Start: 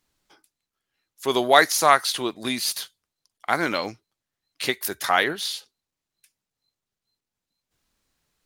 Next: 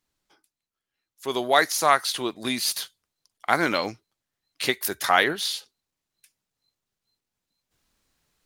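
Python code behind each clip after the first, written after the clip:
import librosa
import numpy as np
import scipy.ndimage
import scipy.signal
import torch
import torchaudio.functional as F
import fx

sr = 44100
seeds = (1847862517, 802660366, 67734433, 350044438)

y = fx.rider(x, sr, range_db=10, speed_s=2.0)
y = y * librosa.db_to_amplitude(-1.0)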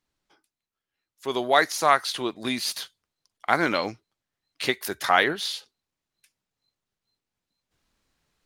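y = fx.high_shelf(x, sr, hz=7300.0, db=-9.0)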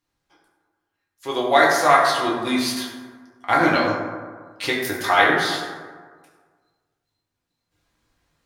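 y = fx.rev_fdn(x, sr, rt60_s=1.6, lf_ratio=1.0, hf_ratio=0.4, size_ms=58.0, drr_db=-5.0)
y = y * librosa.db_to_amplitude(-1.0)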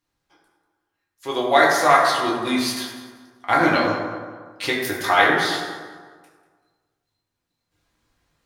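y = fx.echo_feedback(x, sr, ms=193, feedback_pct=27, wet_db=-16)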